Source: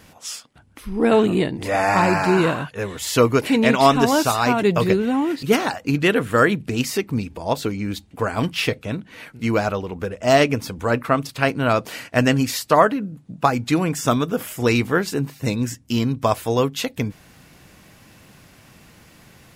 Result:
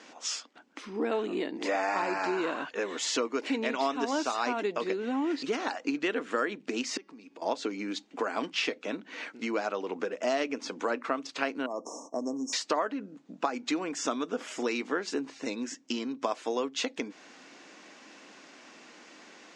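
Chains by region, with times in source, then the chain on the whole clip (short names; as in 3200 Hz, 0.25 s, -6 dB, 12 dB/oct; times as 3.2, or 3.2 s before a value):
6.97–7.42 compressor 4:1, threshold -35 dBFS + resonator 280 Hz, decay 0.86 s
11.66–12.53 brick-wall FIR band-stop 1200–5200 Hz + compressor 2:1, threshold -31 dBFS
whole clip: compressor 6:1, threshold -26 dBFS; elliptic band-pass 270–6700 Hz, stop band 40 dB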